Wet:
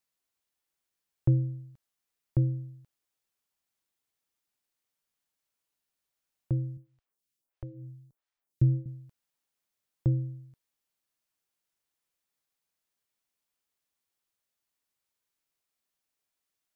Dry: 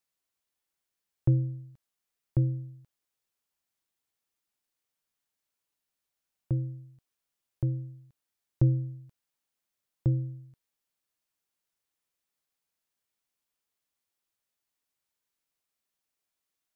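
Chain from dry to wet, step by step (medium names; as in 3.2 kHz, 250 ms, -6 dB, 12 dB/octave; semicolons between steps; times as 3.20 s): 6.77–8.86 s: lamp-driven phase shifter 1.5 Hz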